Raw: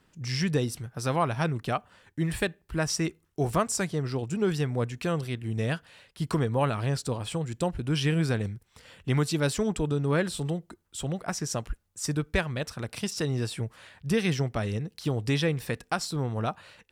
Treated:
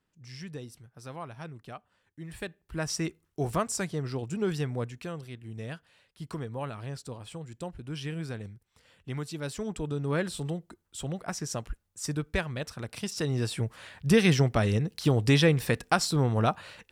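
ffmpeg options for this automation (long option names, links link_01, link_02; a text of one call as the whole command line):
ffmpeg -i in.wav -af "volume=11.5dB,afade=type=in:start_time=2.24:duration=0.73:silence=0.266073,afade=type=out:start_time=4.69:duration=0.44:silence=0.446684,afade=type=in:start_time=9.39:duration=0.82:silence=0.446684,afade=type=in:start_time=13.05:duration=1.05:silence=0.421697" out.wav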